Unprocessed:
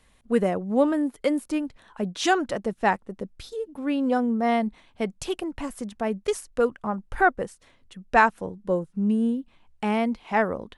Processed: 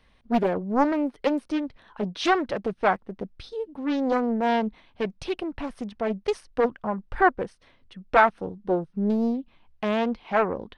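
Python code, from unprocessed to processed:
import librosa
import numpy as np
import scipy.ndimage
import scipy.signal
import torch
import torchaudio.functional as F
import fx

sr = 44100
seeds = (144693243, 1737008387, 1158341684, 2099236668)

y = scipy.signal.savgol_filter(x, 15, 4, mode='constant')
y = fx.doppler_dist(y, sr, depth_ms=0.67)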